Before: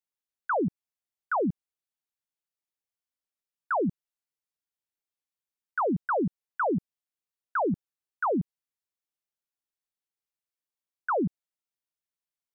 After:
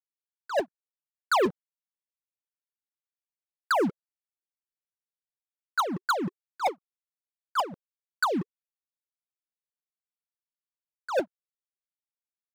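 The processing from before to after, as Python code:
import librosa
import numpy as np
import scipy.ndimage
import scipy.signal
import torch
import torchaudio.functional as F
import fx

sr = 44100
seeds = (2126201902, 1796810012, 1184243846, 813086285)

y = fx.wah_lfo(x, sr, hz=3.3, low_hz=360.0, high_hz=1600.0, q=12.0)
y = fx.leveller(y, sr, passes=5)
y = F.gain(torch.from_numpy(y), 4.5).numpy()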